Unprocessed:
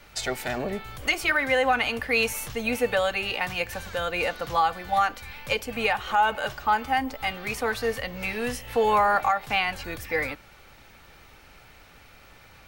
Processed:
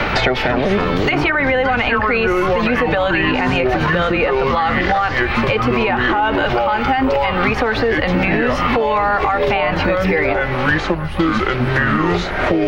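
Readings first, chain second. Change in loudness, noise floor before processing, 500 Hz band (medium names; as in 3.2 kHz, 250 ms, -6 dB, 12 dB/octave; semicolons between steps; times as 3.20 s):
+9.5 dB, -52 dBFS, +11.5 dB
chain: ever faster or slower copies 124 ms, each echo -6 st, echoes 2, each echo -6 dB; compression 4:1, threshold -27 dBFS, peak gain reduction 9.5 dB; distance through air 280 m; time-frequency box 10.94–11.20 s, 240–8100 Hz -20 dB; on a send: thinning echo 635 ms, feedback 72%, high-pass 200 Hz, level -23.5 dB; on the sum: loudness maximiser +27.5 dB; three bands compressed up and down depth 100%; trim -7.5 dB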